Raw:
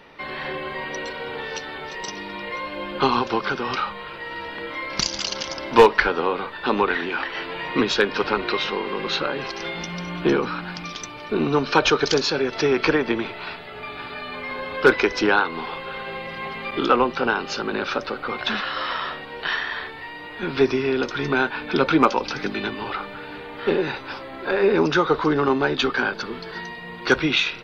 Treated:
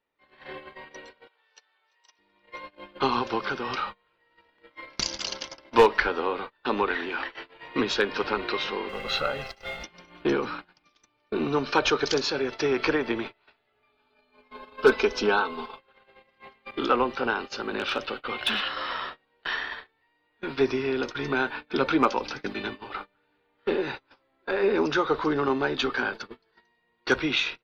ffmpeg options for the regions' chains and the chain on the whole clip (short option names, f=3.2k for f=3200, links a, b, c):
-filter_complex "[0:a]asettb=1/sr,asplit=3[a][b][c];[a]atrim=end=1.274[d];[b]atrim=start=1.27:end=2.19,asetpts=PTS-STARTPTS,afade=t=in:d=0.004:c=qsin,afade=t=out:st=0.916:d=0.004:c=qsin,highpass=890,bandreject=f=2k:w=12[e];[c]atrim=start=2.186[f];[d][e]acrossfade=d=0.004:c1=hsin:c2=qsin[g];[g][f]acrossfade=d=0.004:c1=qsin:c2=hsin,asettb=1/sr,asplit=3[h][i][j];[h]atrim=end=8.894[k];[i]atrim=start=8.89:end=9.84,asetpts=PTS-STARTPTS,afade=t=in:d=0.004:c=qsin,afade=t=out:st=0.946:d=0.004:c=qsin,lowshelf=f=90:g=9.5,aecho=1:1:1.5:0.75,atrim=end_sample=41895,aeval=exprs='sgn(val(0))*max(abs(val(0))-0.00473,0)':c=same[l];[j]atrim=start=9.836[m];[k][l]acrossfade=d=0.004:c1=hsin:c2=qsin[n];[n][m]acrossfade=d=0.004:c1=qsin:c2=hsin,asettb=1/sr,asplit=3[o][p][q];[o]atrim=end=13.924[r];[p]atrim=start=13.92:end=15.79,asetpts=PTS-STARTPTS,afade=t=in:d=0.004:c=qsin,afade=t=out:st=1.866:d=0.004:c=qsin,equalizer=f=1.9k:t=o:w=0.33:g=-12,aecho=1:1:4.6:0.65,atrim=end_sample=82467[s];[q]atrim=start=15.786[t];[r][s]acrossfade=d=0.004:c1=hsin:c2=qsin[u];[u][t]acrossfade=d=0.004:c1=qsin:c2=hsin,asettb=1/sr,asplit=3[v][w][x];[v]atrim=end=17.794[y];[w]atrim=start=17.79:end=18.68,asetpts=PTS-STARTPTS,afade=t=in:d=0.004:c=qsin,afade=t=out:st=0.886:d=0.004:c=qsin,equalizer=f=3k:t=o:w=0.64:g=10,asoftclip=type=hard:threshold=-13dB[z];[x]atrim=start=18.676[aa];[y][z]acrossfade=d=0.004:c1=hsin:c2=qsin[ab];[ab][aa]acrossfade=d=0.004:c1=qsin:c2=hsin,agate=range=-29dB:threshold=-28dB:ratio=16:detection=peak,equalizer=f=170:t=o:w=0.2:g=-12,volume=-5dB"